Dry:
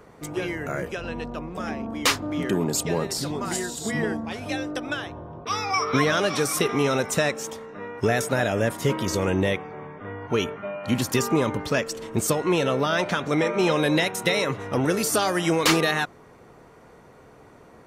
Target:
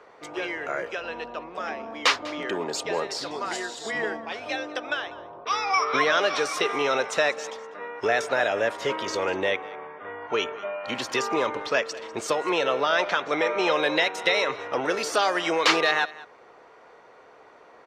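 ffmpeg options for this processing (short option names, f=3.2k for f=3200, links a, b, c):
-filter_complex "[0:a]acrossover=split=400 5800:gain=0.0794 1 0.0631[a][b][c];[a][b][c]amix=inputs=3:normalize=0,aecho=1:1:196:0.106,volume=2dB"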